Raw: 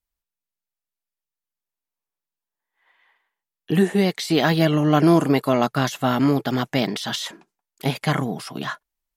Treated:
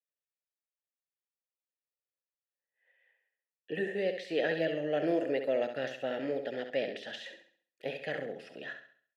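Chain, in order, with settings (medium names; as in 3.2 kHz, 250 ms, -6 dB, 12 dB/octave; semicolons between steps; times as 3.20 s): vowel filter e; flutter echo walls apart 11.6 m, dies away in 0.5 s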